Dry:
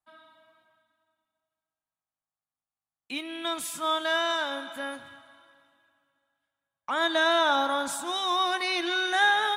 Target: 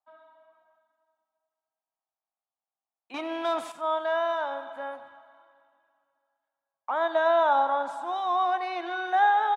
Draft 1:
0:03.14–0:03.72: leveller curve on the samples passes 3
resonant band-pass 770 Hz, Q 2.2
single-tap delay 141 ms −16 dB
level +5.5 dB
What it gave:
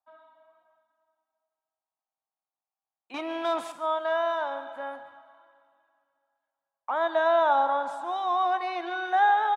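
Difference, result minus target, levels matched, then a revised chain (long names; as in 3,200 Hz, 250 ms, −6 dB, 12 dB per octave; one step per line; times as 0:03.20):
echo 49 ms late
0:03.14–0:03.72: leveller curve on the samples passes 3
resonant band-pass 770 Hz, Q 2.2
single-tap delay 92 ms −16 dB
level +5.5 dB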